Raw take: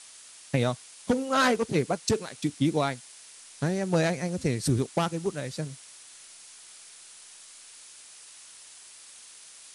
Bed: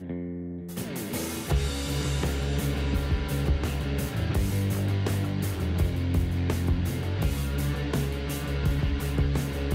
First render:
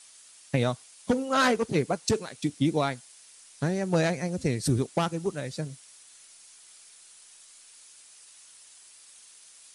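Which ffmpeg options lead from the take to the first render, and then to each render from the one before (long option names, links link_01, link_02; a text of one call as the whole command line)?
ffmpeg -i in.wav -af "afftdn=noise_reduction=6:noise_floor=-50" out.wav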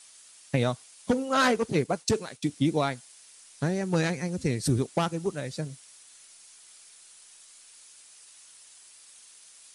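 ffmpeg -i in.wav -filter_complex "[0:a]asettb=1/sr,asplit=3[link_01][link_02][link_03];[link_01]atrim=end=1.844[link_04];[link_02]atrim=start=1.84:end=2.56,asetpts=PTS-STARTPTS,afade=type=in:duration=0.004:curve=qsin,afade=type=out:start_time=0.716:duration=0.004:curve=qsin,agate=range=-33dB:threshold=-45dB:ratio=3:release=100:detection=peak[link_05];[link_03]atrim=start=2.556[link_06];[link_04][link_05]acrossfade=duration=0.004:curve1=hsin:curve2=qsin[link_07];[link_07][link_06]acrossfade=duration=0.004:curve1=qsin:curve2=hsin,asettb=1/sr,asplit=3[link_08][link_09][link_10];[link_08]atrim=end=3.814[link_11];[link_09]atrim=start=3.81:end=4.51,asetpts=PTS-STARTPTS,afade=type=in:duration=0.004:curve=qsin,afade=type=out:start_time=0.696:duration=0.004:curve=qsin,equalizer=frequency=630:width=4.5:gain=-11[link_12];[link_10]atrim=start=4.506[link_13];[link_11][link_12]acrossfade=duration=0.004:curve1=hsin:curve2=qsin[link_14];[link_14][link_13]acrossfade=duration=0.004:curve1=qsin:curve2=hsin" out.wav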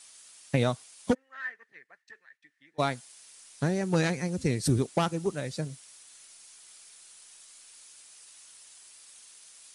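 ffmpeg -i in.wav -filter_complex "[0:a]asplit=3[link_01][link_02][link_03];[link_01]afade=type=out:start_time=1.13:duration=0.02[link_04];[link_02]bandpass=frequency=1800:width_type=q:width=18,afade=type=in:start_time=1.13:duration=0.02,afade=type=out:start_time=2.78:duration=0.02[link_05];[link_03]afade=type=in:start_time=2.78:duration=0.02[link_06];[link_04][link_05][link_06]amix=inputs=3:normalize=0" out.wav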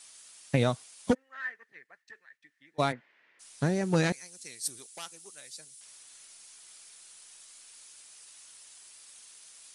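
ffmpeg -i in.wav -filter_complex "[0:a]asplit=3[link_01][link_02][link_03];[link_01]afade=type=out:start_time=2.91:duration=0.02[link_04];[link_02]highpass=200,equalizer=frequency=300:width_type=q:width=4:gain=3,equalizer=frequency=770:width_type=q:width=4:gain=-5,equalizer=frequency=1200:width_type=q:width=4:gain=-4,equalizer=frequency=1900:width_type=q:width=4:gain=7,lowpass=frequency=2300:width=0.5412,lowpass=frequency=2300:width=1.3066,afade=type=in:start_time=2.91:duration=0.02,afade=type=out:start_time=3.39:duration=0.02[link_05];[link_03]afade=type=in:start_time=3.39:duration=0.02[link_06];[link_04][link_05][link_06]amix=inputs=3:normalize=0,asettb=1/sr,asplit=3[link_07][link_08][link_09];[link_07]atrim=end=4.124[link_10];[link_08]atrim=start=4.12:end=5.81,asetpts=PTS-STARTPTS,afade=type=in:duration=0.004:curve=qsin,afade=type=out:start_time=1.686:duration=0.004:curve=qsin,aderivative[link_11];[link_09]atrim=start=5.806[link_12];[link_10][link_11]acrossfade=duration=0.004:curve1=hsin:curve2=qsin[link_13];[link_13][link_12]acrossfade=duration=0.004:curve1=qsin:curve2=hsin" out.wav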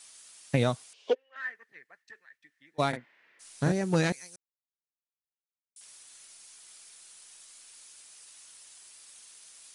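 ffmpeg -i in.wav -filter_complex "[0:a]asettb=1/sr,asplit=3[link_01][link_02][link_03];[link_01]atrim=end=0.934[link_04];[link_02]atrim=start=0.93:end=1.36,asetpts=PTS-STARTPTS,afade=type=in:duration=0.004:curve=qsin,afade=type=out:start_time=0.426:duration=0.004:curve=qsin,highpass=frequency=420:width=0.5412,highpass=frequency=420:width=1.3066,equalizer=frequency=420:width_type=q:width=4:gain=10,equalizer=frequency=880:width_type=q:width=4:gain=-6,equalizer=frequency=1300:width_type=q:width=4:gain=-10,equalizer=frequency=1900:width_type=q:width=4:gain=-7,equalizer=frequency=2900:width_type=q:width=4:gain=8,equalizer=frequency=4300:width_type=q:width=4:gain=-3,lowpass=frequency=4800:width=0.5412,lowpass=frequency=4800:width=1.3066[link_05];[link_03]atrim=start=1.356[link_06];[link_04][link_05]acrossfade=duration=0.004:curve1=hsin:curve2=qsin[link_07];[link_07][link_06]acrossfade=duration=0.004:curve1=qsin:curve2=hsin,asettb=1/sr,asplit=3[link_08][link_09][link_10];[link_08]atrim=end=2.894[link_11];[link_09]atrim=start=2.89:end=3.72,asetpts=PTS-STARTPTS,afade=type=in:duration=0.004:curve=qsin,afade=type=out:start_time=0.826:duration=0.004:curve=qsin,asplit=2[link_12][link_13];[link_13]adelay=41,volume=-4dB[link_14];[link_12][link_14]amix=inputs=2:normalize=0,atrim=end_sample=36603[link_15];[link_10]atrim=start=3.716[link_16];[link_11][link_15]acrossfade=duration=0.004:curve1=hsin:curve2=qsin[link_17];[link_17][link_16]acrossfade=duration=0.004:curve1=qsin:curve2=hsin,asplit=3[link_18][link_19][link_20];[link_18]atrim=end=4.36,asetpts=PTS-STARTPTS,afade=type=out:start_time=4.356:duration=0.004:curve=hsin[link_21];[link_19]atrim=start=4.36:end=5.76,asetpts=PTS-STARTPTS,volume=0[link_22];[link_20]atrim=start=5.76,asetpts=PTS-STARTPTS,afade=type=in:duration=0.004:curve=hsin[link_23];[link_21][link_22][link_23]concat=n=3:v=0:a=1" out.wav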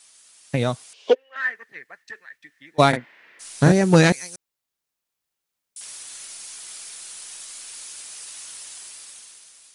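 ffmpeg -i in.wav -af "dynaudnorm=framelen=210:gausssize=9:maxgain=14dB" out.wav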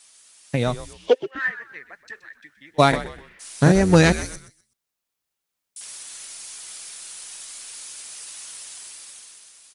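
ffmpeg -i in.wav -filter_complex "[0:a]asplit=4[link_01][link_02][link_03][link_04];[link_02]adelay=125,afreqshift=-100,volume=-14dB[link_05];[link_03]adelay=250,afreqshift=-200,volume=-23.6dB[link_06];[link_04]adelay=375,afreqshift=-300,volume=-33.3dB[link_07];[link_01][link_05][link_06][link_07]amix=inputs=4:normalize=0" out.wav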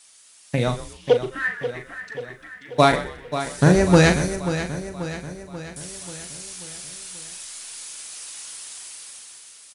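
ffmpeg -i in.wav -filter_complex "[0:a]asplit=2[link_01][link_02];[link_02]adelay=39,volume=-8.5dB[link_03];[link_01][link_03]amix=inputs=2:normalize=0,aecho=1:1:536|1072|1608|2144|2680|3216:0.282|0.155|0.0853|0.0469|0.0258|0.0142" out.wav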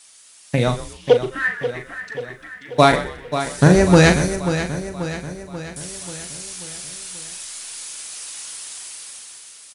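ffmpeg -i in.wav -af "volume=3.5dB,alimiter=limit=-1dB:level=0:latency=1" out.wav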